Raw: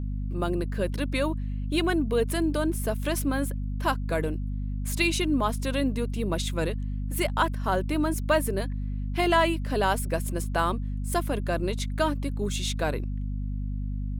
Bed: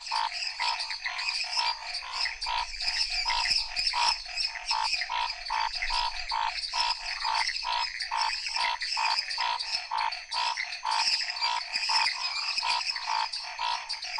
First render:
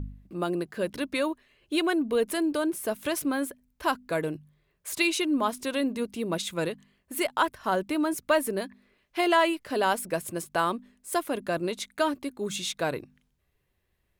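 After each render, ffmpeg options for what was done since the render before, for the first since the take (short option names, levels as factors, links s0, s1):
-af "bandreject=f=50:t=h:w=4,bandreject=f=100:t=h:w=4,bandreject=f=150:t=h:w=4,bandreject=f=200:t=h:w=4,bandreject=f=250:t=h:w=4"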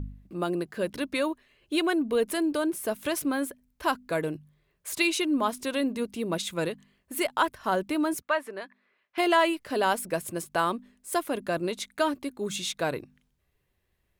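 -filter_complex "[0:a]asettb=1/sr,asplit=3[s0][s1][s2];[s0]atrim=end=8.224[s3];[s1]atrim=start=8.22:end=9.18,asetpts=PTS-STARTPTS,afade=t=in:d=0.004:c=qsin,afade=t=out:st=0.956:d=0.004:c=qsin,bandpass=f=1400:t=q:w=0.84[s4];[s2]atrim=start=9.176[s5];[s3][s4]acrossfade=d=0.004:c1=hsin:c2=qsin[s6];[s6][s5]acrossfade=d=0.004:c1=qsin:c2=hsin"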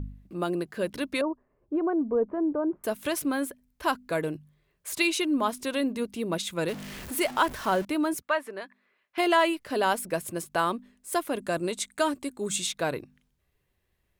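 -filter_complex "[0:a]asettb=1/sr,asplit=3[s0][s1][s2];[s0]atrim=end=1.214[s3];[s1]atrim=start=1.21:end=2.84,asetpts=PTS-STARTPTS,afade=t=in:d=0.004:c=qsin,afade=t=out:st=1.626:d=0.004:c=qsin,lowpass=f=1100:w=0.5412,lowpass=f=1100:w=1.3066[s4];[s2]atrim=start=2.836[s5];[s3][s4]acrossfade=d=0.004:c1=hsin:c2=qsin[s6];[s6][s5]acrossfade=d=0.004:c1=qsin:c2=hsin,asettb=1/sr,asplit=3[s7][s8][s9];[s7]atrim=end=6.684[s10];[s8]atrim=start=6.68:end=7.85,asetpts=PTS-STARTPTS,afade=t=in:d=0.004:c=qsin,afade=t=out:st=1.166:d=0.004:c=qsin,aeval=exprs='val(0)+0.5*0.0188*sgn(val(0))':c=same[s11];[s9]atrim=start=7.846[s12];[s10][s11]acrossfade=d=0.004:c1=hsin:c2=qsin[s13];[s13][s12]acrossfade=d=0.004:c1=qsin:c2=hsin,asettb=1/sr,asplit=3[s14][s15][s16];[s14]atrim=end=11.384[s17];[s15]atrim=start=11.38:end=12.67,asetpts=PTS-STARTPTS,afade=t=in:d=0.004:c=qsin,afade=t=out:st=1.286:d=0.004:c=qsin,equalizer=f=8100:w=2.5:g=11.5[s18];[s16]atrim=start=12.666[s19];[s17][s18]acrossfade=d=0.004:c1=hsin:c2=qsin[s20];[s20][s19]acrossfade=d=0.004:c1=qsin:c2=hsin"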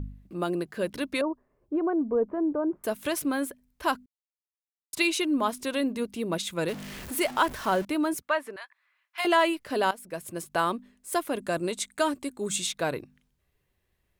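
-filter_complex "[0:a]asettb=1/sr,asplit=3[s0][s1][s2];[s0]atrim=end=8.564[s3];[s1]atrim=start=8.56:end=9.25,asetpts=PTS-STARTPTS,afade=t=in:d=0.004:c=qsin,afade=t=out:st=0.686:d=0.004:c=qsin,highpass=f=850:w=0.5412,highpass=f=850:w=1.3066[s4];[s2]atrim=start=9.246[s5];[s3][s4]acrossfade=d=0.004:c1=hsin:c2=qsin[s6];[s6][s5]acrossfade=d=0.004:c1=qsin:c2=hsin,asplit=4[s7][s8][s9][s10];[s7]atrim=end=4.06,asetpts=PTS-STARTPTS,afade=t=out:st=4.056:d=0.004:c=hsin[s11];[s8]atrim=start=4.06:end=4.93,asetpts=PTS-STARTPTS,volume=0[s12];[s9]atrim=start=4.93:end=9.91,asetpts=PTS-STARTPTS,afade=t=in:d=0.004:c=hsin,afade=t=out:st=4.976:d=0.004:c=hsin:silence=0.149624[s13];[s10]atrim=start=9.91,asetpts=PTS-STARTPTS,afade=t=in:d=0.64:silence=0.149624[s14];[s11][s12][s13][s14]concat=n=4:v=0:a=1"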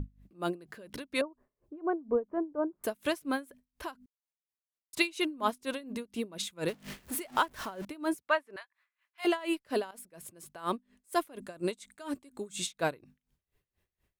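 -af "aeval=exprs='val(0)*pow(10,-23*(0.5-0.5*cos(2*PI*4.2*n/s))/20)':c=same"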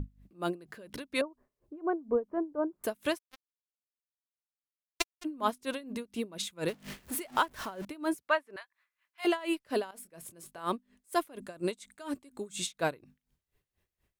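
-filter_complex "[0:a]asplit=3[s0][s1][s2];[s0]afade=t=out:st=3.17:d=0.02[s3];[s1]acrusher=bits=2:mix=0:aa=0.5,afade=t=in:st=3.17:d=0.02,afade=t=out:st=5.24:d=0.02[s4];[s2]afade=t=in:st=5.24:d=0.02[s5];[s3][s4][s5]amix=inputs=3:normalize=0,asettb=1/sr,asplit=3[s6][s7][s8];[s6]atrim=end=9.944[s9];[s7]atrim=start=9.94:end=10.65,asetpts=PTS-STARTPTS,afade=t=in:d=0.004:c=qsin,afade=t=out:st=0.706:d=0.004:c=qsin,asplit=2[s10][s11];[s11]adelay=24,volume=0.299[s12];[s10][s12]amix=inputs=2:normalize=0,atrim=end_sample=31311[s13];[s8]atrim=start=10.646[s14];[s9][s13]acrossfade=d=0.004:c1=hsin:c2=qsin[s15];[s15][s14]acrossfade=d=0.004:c1=qsin:c2=hsin"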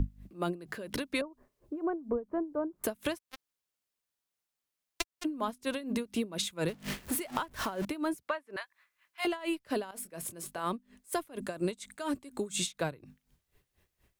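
-filter_complex "[0:a]asplit=2[s0][s1];[s1]alimiter=limit=0.106:level=0:latency=1:release=266,volume=1.41[s2];[s0][s2]amix=inputs=2:normalize=0,acrossover=split=160[s3][s4];[s4]acompressor=threshold=0.0316:ratio=10[s5];[s3][s5]amix=inputs=2:normalize=0"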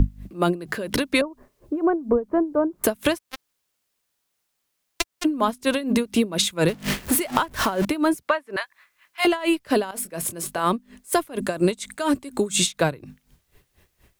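-af "volume=3.98,alimiter=limit=0.891:level=0:latency=1"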